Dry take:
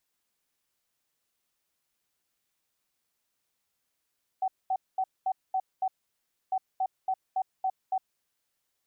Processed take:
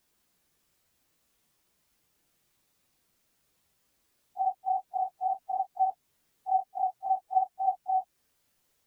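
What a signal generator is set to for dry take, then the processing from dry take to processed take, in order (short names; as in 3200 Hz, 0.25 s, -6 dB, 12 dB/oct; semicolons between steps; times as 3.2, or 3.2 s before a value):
beep pattern sine 758 Hz, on 0.06 s, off 0.22 s, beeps 6, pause 0.64 s, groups 2, -24.5 dBFS
phase scrambler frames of 0.1 s; low shelf 450 Hz +8.5 dB; in parallel at 0 dB: compressor, threshold -38 dBFS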